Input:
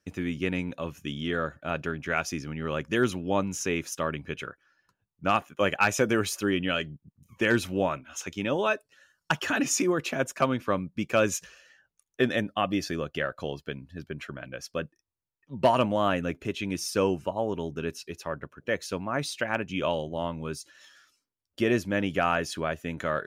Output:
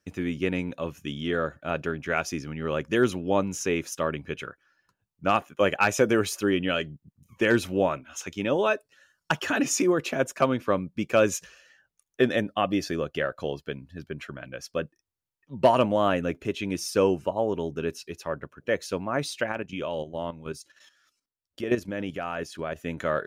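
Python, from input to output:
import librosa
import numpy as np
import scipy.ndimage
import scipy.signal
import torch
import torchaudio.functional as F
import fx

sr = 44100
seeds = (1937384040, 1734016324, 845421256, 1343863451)

y = fx.level_steps(x, sr, step_db=11, at=(19.52, 22.76))
y = fx.dynamic_eq(y, sr, hz=460.0, q=0.98, threshold_db=-37.0, ratio=4.0, max_db=4)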